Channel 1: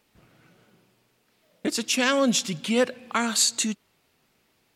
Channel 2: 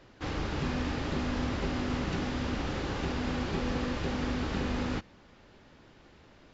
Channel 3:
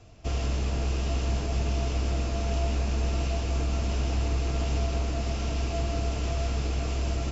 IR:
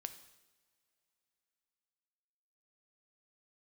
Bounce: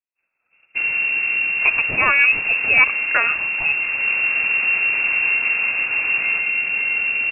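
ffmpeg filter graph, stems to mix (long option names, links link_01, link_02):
-filter_complex "[0:a]volume=0dB[link_01];[1:a]adelay=1400,volume=-5.5dB[link_02];[2:a]adelay=500,volume=-3.5dB[link_03];[link_01][link_02][link_03]amix=inputs=3:normalize=0,agate=range=-33dB:threshold=-42dB:ratio=3:detection=peak,dynaudnorm=framelen=180:gausssize=3:maxgain=10dB,lowpass=frequency=2400:width_type=q:width=0.5098,lowpass=frequency=2400:width_type=q:width=0.6013,lowpass=frequency=2400:width_type=q:width=0.9,lowpass=frequency=2400:width_type=q:width=2.563,afreqshift=-2800"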